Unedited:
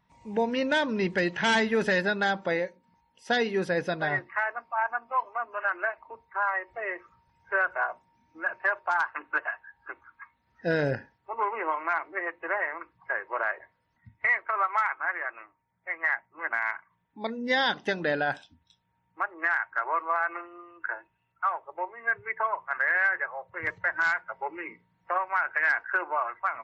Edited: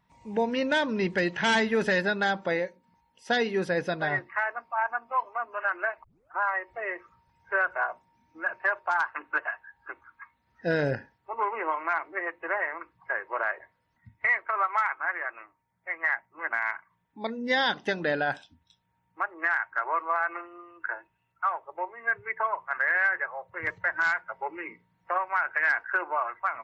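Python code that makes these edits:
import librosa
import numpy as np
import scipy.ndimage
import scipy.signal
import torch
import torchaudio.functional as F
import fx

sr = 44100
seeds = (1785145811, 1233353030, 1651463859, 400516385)

y = fx.edit(x, sr, fx.tape_start(start_s=6.04, length_s=0.35), tone=tone)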